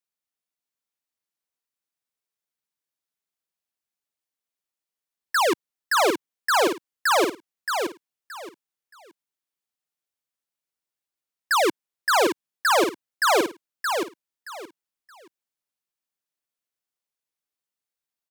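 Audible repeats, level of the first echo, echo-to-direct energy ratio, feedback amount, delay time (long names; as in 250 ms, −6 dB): 3, −5.0 dB, −5.0 dB, 23%, 623 ms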